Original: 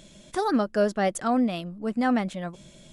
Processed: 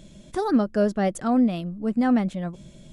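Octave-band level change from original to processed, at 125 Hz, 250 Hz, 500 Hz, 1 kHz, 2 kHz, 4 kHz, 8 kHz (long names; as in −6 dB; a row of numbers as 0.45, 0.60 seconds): +5.0, +4.0, +0.5, −1.5, −3.0, −3.5, −3.5 decibels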